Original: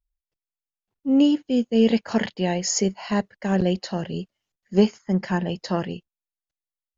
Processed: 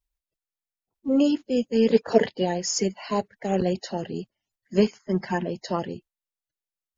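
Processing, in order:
spectral magnitudes quantised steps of 30 dB
0:01.94–0:02.43: parametric band 440 Hz +13.5 dB → +5.5 dB 1.2 octaves
level −2 dB

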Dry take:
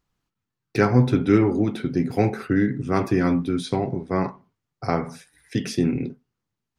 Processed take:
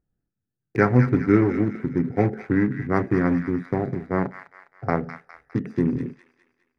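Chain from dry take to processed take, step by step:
adaptive Wiener filter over 41 samples
high shelf with overshoot 2,400 Hz −6.5 dB, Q 3
delay with a high-pass on its return 204 ms, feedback 46%, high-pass 1,800 Hz, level −4.5 dB

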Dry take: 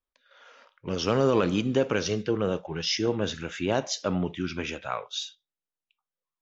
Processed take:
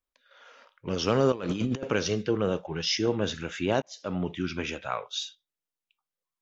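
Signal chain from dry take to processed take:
0:01.32–0:01.83: compressor whose output falls as the input rises −29 dBFS, ratio −0.5
0:03.82–0:04.32: fade in

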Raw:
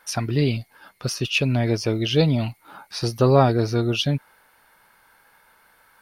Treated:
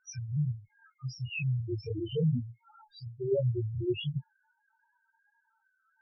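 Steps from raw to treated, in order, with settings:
0:02.84–0:03.44: tuned comb filter 390 Hz, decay 0.19 s, harmonics all, mix 50%
spectral peaks only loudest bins 1
multi-voice chorus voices 6, 1 Hz, delay 22 ms, depth 3 ms
level +2 dB

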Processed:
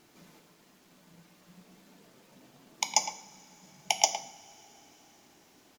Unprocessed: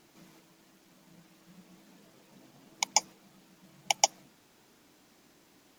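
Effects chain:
far-end echo of a speakerphone 110 ms, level −9 dB
coupled-rooms reverb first 0.55 s, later 4.4 s, from −21 dB, DRR 8 dB

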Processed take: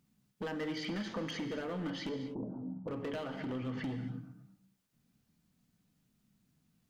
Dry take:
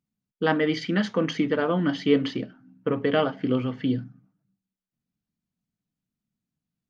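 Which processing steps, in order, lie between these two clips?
downward compressor 16 to 1, threshold −32 dBFS, peak gain reduction 18.5 dB
gain into a clipping stage and back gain 34 dB
brickwall limiter −45.5 dBFS, peak gain reduction 11.5 dB
0:02.09–0:02.88: Butterworth low-pass 990 Hz 48 dB per octave
reverb whose tail is shaped and stops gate 270 ms flat, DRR 7.5 dB
level +11 dB

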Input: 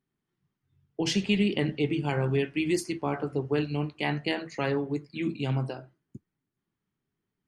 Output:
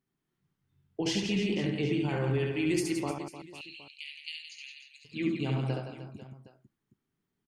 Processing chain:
brickwall limiter −21 dBFS, peak gain reduction 8 dB
0:03.11–0:05.05: Chebyshev high-pass filter 2,400 Hz, order 5
reverse bouncing-ball delay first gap 70 ms, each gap 1.4×, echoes 5
level −1.5 dB

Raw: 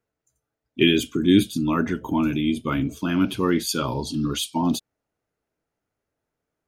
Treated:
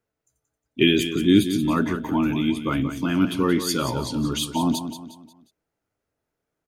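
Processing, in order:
repeating echo 179 ms, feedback 40%, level −10 dB

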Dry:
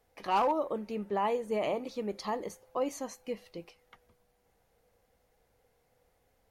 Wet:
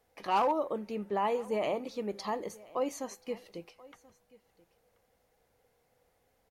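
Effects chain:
low-shelf EQ 73 Hz −7 dB
single-tap delay 1,032 ms −22.5 dB

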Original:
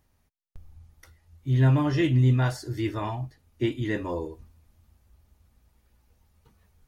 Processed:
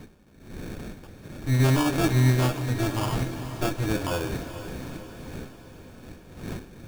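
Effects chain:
lower of the sound and its delayed copy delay 9.8 ms
wind on the microphone 280 Hz −44 dBFS
in parallel at −2 dB: downward compressor, threshold −32 dBFS, peak gain reduction 14 dB
on the sum: sample-rate reduction 2,000 Hz, jitter 0%
feedback delay with all-pass diffusion 455 ms, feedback 59%, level −11 dB

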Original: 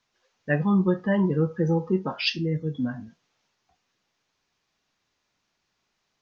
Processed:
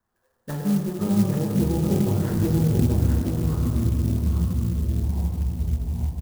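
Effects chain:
phase distortion by the signal itself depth 0.5 ms
Butterworth low-pass 1,900 Hz 96 dB per octave
treble cut that deepens with the level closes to 670 Hz, closed at −23.5 dBFS
low-shelf EQ 150 Hz +8.5 dB
downward compressor, threshold −24 dBFS, peak gain reduction 9 dB
delay with pitch and tempo change per echo 310 ms, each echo −6 semitones, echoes 3
single-tap delay 833 ms −4.5 dB
convolution reverb RT60 3.2 s, pre-delay 7 ms, DRR −2 dB
converter with an unsteady clock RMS 0.07 ms
level −2 dB

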